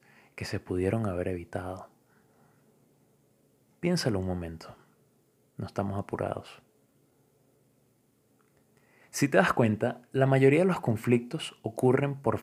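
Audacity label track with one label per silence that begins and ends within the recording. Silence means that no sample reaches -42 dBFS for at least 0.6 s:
1.850000	3.830000	silence
4.720000	5.590000	silence
6.540000	9.140000	silence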